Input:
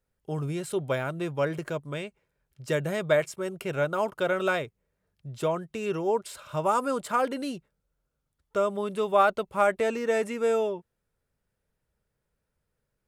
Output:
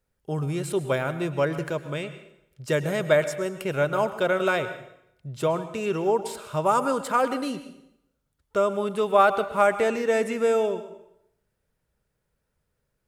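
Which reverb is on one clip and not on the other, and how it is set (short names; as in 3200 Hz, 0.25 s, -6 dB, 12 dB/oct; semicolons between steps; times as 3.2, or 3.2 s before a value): plate-style reverb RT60 0.77 s, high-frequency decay 0.9×, pre-delay 95 ms, DRR 11.5 dB; gain +3 dB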